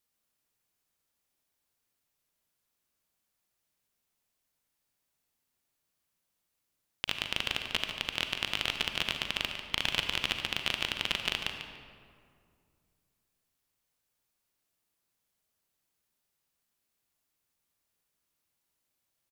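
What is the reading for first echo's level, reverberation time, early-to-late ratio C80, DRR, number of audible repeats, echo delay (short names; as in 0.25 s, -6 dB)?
-9.5 dB, 2.2 s, 5.0 dB, 4.0 dB, 1, 0.145 s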